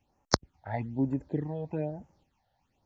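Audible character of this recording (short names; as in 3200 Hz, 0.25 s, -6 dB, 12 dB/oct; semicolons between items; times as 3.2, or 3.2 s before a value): phasing stages 8, 1.1 Hz, lowest notch 310–4000 Hz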